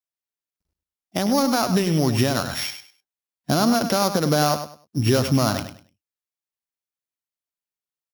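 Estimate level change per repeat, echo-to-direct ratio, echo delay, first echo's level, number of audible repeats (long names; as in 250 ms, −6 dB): −13.0 dB, −10.0 dB, 100 ms, −10.0 dB, 2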